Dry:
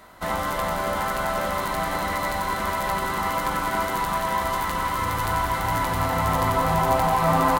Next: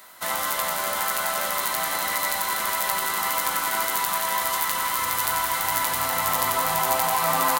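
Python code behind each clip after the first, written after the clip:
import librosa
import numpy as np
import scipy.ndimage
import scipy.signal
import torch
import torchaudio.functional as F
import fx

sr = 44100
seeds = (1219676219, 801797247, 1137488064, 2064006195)

y = fx.tilt_eq(x, sr, slope=4.0)
y = y * librosa.db_to_amplitude(-2.0)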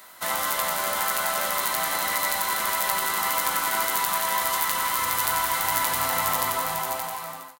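y = fx.fade_out_tail(x, sr, length_s=1.42)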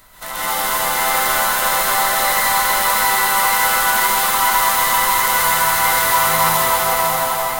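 y = fx.dmg_noise_colour(x, sr, seeds[0], colour='brown', level_db=-51.0)
y = y + 10.0 ** (-4.5 / 20.0) * np.pad(y, (int(583 * sr / 1000.0), 0))[:len(y)]
y = fx.rev_plate(y, sr, seeds[1], rt60_s=2.6, hf_ratio=0.8, predelay_ms=110, drr_db=-9.5)
y = y * librosa.db_to_amplitude(-2.0)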